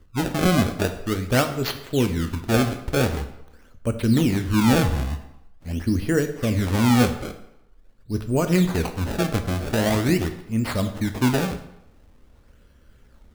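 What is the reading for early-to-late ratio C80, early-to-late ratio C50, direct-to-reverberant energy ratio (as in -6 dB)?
13.0 dB, 10.5 dB, 7.0 dB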